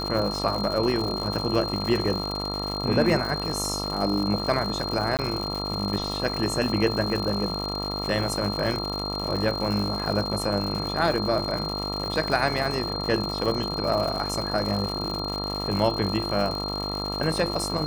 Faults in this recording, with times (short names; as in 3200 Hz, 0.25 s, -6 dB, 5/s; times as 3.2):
buzz 50 Hz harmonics 27 -32 dBFS
crackle 160/s -29 dBFS
tone 4200 Hz -31 dBFS
5.17–5.19 gap 18 ms